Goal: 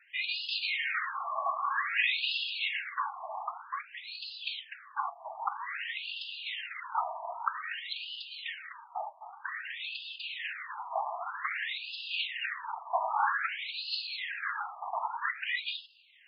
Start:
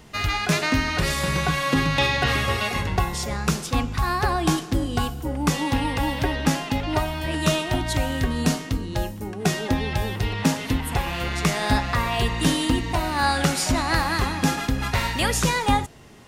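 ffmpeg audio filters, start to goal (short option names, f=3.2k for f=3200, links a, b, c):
-af "afftfilt=real='hypot(re,im)*cos(2*PI*random(0))':imag='hypot(re,im)*sin(2*PI*random(1))':win_size=512:overlap=0.75,afftfilt=real='re*between(b*sr/1024,850*pow(3700/850,0.5+0.5*sin(2*PI*0.52*pts/sr))/1.41,850*pow(3700/850,0.5+0.5*sin(2*PI*0.52*pts/sr))*1.41)':imag='im*between(b*sr/1024,850*pow(3700/850,0.5+0.5*sin(2*PI*0.52*pts/sr))/1.41,850*pow(3700/850,0.5+0.5*sin(2*PI*0.52*pts/sr))*1.41)':win_size=1024:overlap=0.75,volume=3.5dB"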